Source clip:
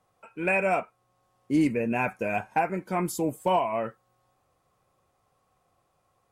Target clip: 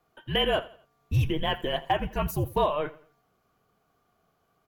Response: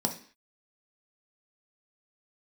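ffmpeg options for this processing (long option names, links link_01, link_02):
-filter_complex "[0:a]asetrate=59535,aresample=44100,equalizer=frequency=9100:width=6.7:gain=-14.5,asplit=2[link_01][link_02];[link_02]aecho=0:1:85|170|255:0.112|0.0426|0.0162[link_03];[link_01][link_03]amix=inputs=2:normalize=0,afreqshift=-300"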